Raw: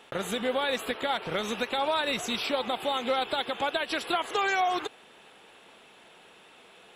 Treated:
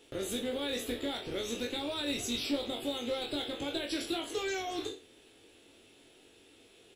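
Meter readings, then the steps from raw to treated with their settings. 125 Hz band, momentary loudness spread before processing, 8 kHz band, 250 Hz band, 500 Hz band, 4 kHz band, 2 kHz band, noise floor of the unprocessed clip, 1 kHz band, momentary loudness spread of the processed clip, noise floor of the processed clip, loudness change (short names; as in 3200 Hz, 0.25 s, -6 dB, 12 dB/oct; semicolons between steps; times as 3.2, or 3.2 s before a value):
-3.0 dB, 3 LU, 0.0 dB, 0.0 dB, -6.0 dB, -4.0 dB, -10.5 dB, -55 dBFS, -14.5 dB, 4 LU, -61 dBFS, -6.0 dB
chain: spectral trails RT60 0.34 s; EQ curve 110 Hz 0 dB, 180 Hz -17 dB, 290 Hz -1 dB, 1000 Hz -23 dB, 5100 Hz -6 dB; in parallel at -4.5 dB: hard clip -34.5 dBFS, distortion -14 dB; on the sum: doubler 21 ms -5 dB; gain -1 dB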